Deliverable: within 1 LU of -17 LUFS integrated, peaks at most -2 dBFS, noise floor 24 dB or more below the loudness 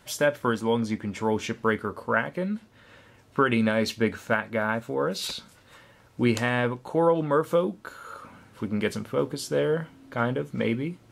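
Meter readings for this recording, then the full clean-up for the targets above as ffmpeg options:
loudness -27.0 LUFS; peak -7.5 dBFS; loudness target -17.0 LUFS
-> -af "volume=10dB,alimiter=limit=-2dB:level=0:latency=1"

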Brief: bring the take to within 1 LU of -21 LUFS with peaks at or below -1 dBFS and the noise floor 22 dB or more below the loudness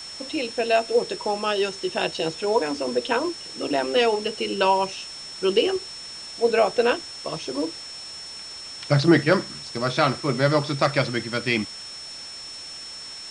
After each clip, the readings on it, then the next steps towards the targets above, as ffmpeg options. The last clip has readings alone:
steady tone 5400 Hz; tone level -36 dBFS; noise floor -38 dBFS; noise floor target -46 dBFS; loudness -23.5 LUFS; peak -4.5 dBFS; loudness target -21.0 LUFS
-> -af "bandreject=f=5.4k:w=30"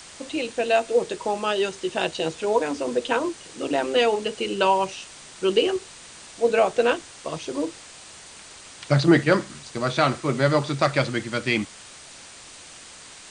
steady tone none; noise floor -45 dBFS; noise floor target -46 dBFS
-> -af "afftdn=nr=6:nf=-45"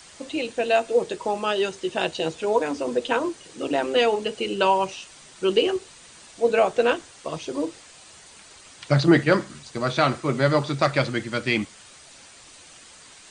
noise floor -48 dBFS; loudness -23.5 LUFS; peak -4.5 dBFS; loudness target -21.0 LUFS
-> -af "volume=2.5dB"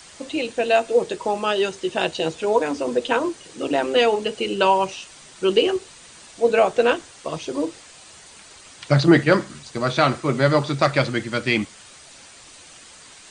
loudness -21.0 LUFS; peak -2.0 dBFS; noise floor -46 dBFS

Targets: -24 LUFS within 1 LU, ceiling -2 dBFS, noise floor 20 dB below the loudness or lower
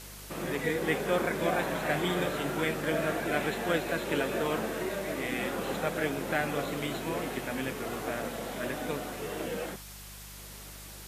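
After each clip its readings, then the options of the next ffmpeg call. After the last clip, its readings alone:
hum 50 Hz; harmonics up to 200 Hz; hum level -48 dBFS; noise floor -46 dBFS; noise floor target -52 dBFS; loudness -32.0 LUFS; peak -14.0 dBFS; loudness target -24.0 LUFS
-> -af "bandreject=f=50:t=h:w=4,bandreject=f=100:t=h:w=4,bandreject=f=150:t=h:w=4,bandreject=f=200:t=h:w=4"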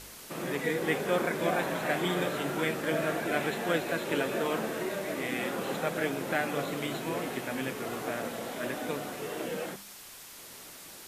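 hum none; noise floor -48 dBFS; noise floor target -52 dBFS
-> -af "afftdn=nr=6:nf=-48"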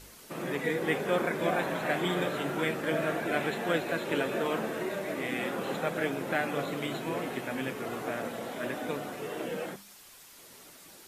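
noise floor -53 dBFS; loudness -32.0 LUFS; peak -13.5 dBFS; loudness target -24.0 LUFS
-> -af "volume=8dB"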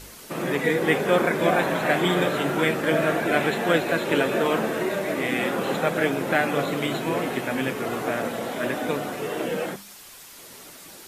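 loudness -24.0 LUFS; peak -5.5 dBFS; noise floor -45 dBFS

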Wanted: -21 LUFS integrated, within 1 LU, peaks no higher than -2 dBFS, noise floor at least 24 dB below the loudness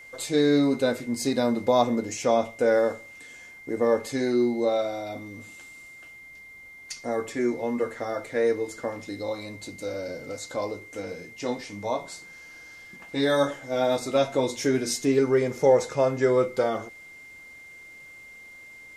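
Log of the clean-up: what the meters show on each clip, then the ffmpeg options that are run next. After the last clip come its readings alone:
steady tone 2100 Hz; tone level -44 dBFS; loudness -26.0 LUFS; peak -8.0 dBFS; loudness target -21.0 LUFS
-> -af "bandreject=f=2.1k:w=30"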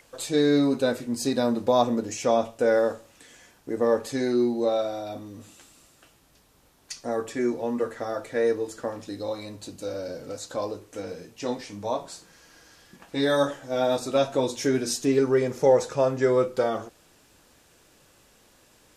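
steady tone none; loudness -26.0 LUFS; peak -7.5 dBFS; loudness target -21.0 LUFS
-> -af "volume=5dB"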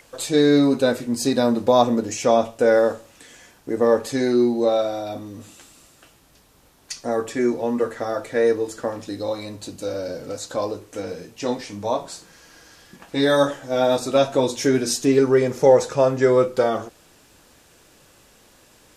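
loudness -21.0 LUFS; peak -2.5 dBFS; noise floor -54 dBFS

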